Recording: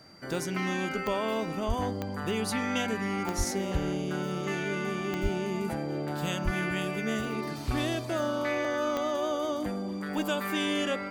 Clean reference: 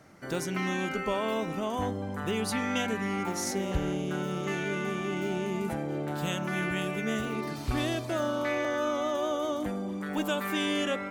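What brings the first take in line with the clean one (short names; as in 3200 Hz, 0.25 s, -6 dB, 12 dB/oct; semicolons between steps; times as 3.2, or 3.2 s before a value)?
de-click; notch 4700 Hz, Q 30; de-plosive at 1.67/3.37/5.22/6.44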